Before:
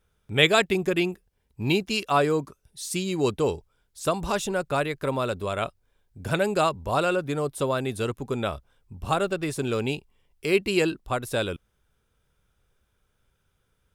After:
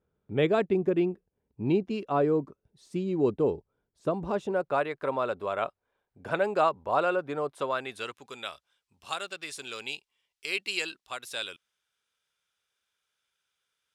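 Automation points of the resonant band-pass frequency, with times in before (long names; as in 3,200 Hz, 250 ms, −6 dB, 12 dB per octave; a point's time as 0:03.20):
resonant band-pass, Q 0.72
0:04.27 310 Hz
0:04.81 870 Hz
0:07.40 870 Hz
0:08.41 4,200 Hz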